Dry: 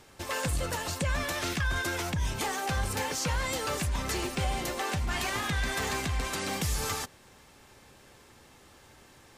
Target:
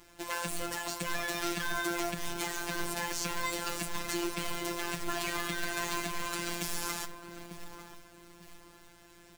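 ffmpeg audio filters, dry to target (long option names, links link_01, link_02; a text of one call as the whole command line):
ffmpeg -i in.wav -filter_complex "[0:a]asplit=2[link_01][link_02];[link_02]adelay=893,lowpass=frequency=830:poles=1,volume=-7dB,asplit=2[link_03][link_04];[link_04]adelay=893,lowpass=frequency=830:poles=1,volume=0.36,asplit=2[link_05][link_06];[link_06]adelay=893,lowpass=frequency=830:poles=1,volume=0.36,asplit=2[link_07][link_08];[link_08]adelay=893,lowpass=frequency=830:poles=1,volume=0.36[link_09];[link_03][link_05][link_07][link_09]amix=inputs=4:normalize=0[link_10];[link_01][link_10]amix=inputs=2:normalize=0,acrusher=bits=2:mode=log:mix=0:aa=0.000001,aecho=1:1:3:0.58,afftfilt=real='hypot(re,im)*cos(PI*b)':imag='0':win_size=1024:overlap=0.75,aeval=exprs='val(0)+0.000316*(sin(2*PI*60*n/s)+sin(2*PI*2*60*n/s)/2+sin(2*PI*3*60*n/s)/3+sin(2*PI*4*60*n/s)/4+sin(2*PI*5*60*n/s)/5)':channel_layout=same,volume=-1dB" out.wav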